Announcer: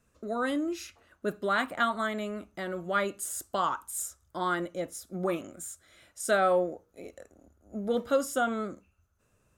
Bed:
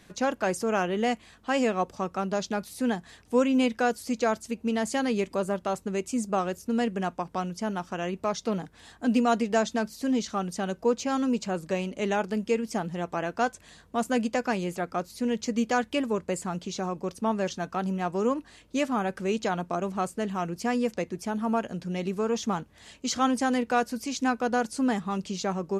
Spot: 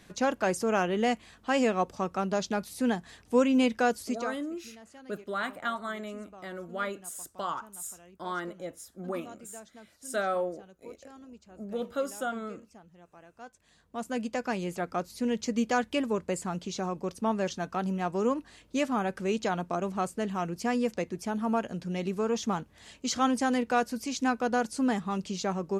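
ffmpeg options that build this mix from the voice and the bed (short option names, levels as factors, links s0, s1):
-filter_complex "[0:a]adelay=3850,volume=0.562[s0];[1:a]volume=11.9,afade=t=out:st=4.01:d=0.35:silence=0.0707946,afade=t=in:st=13.39:d=1.49:silence=0.0794328[s1];[s0][s1]amix=inputs=2:normalize=0"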